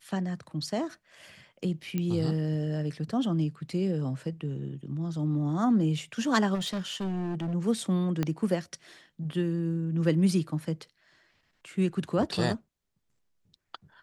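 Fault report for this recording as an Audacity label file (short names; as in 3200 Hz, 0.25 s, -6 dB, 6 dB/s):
1.980000	1.980000	pop -18 dBFS
6.540000	7.550000	clipped -28.5 dBFS
8.230000	8.230000	pop -15 dBFS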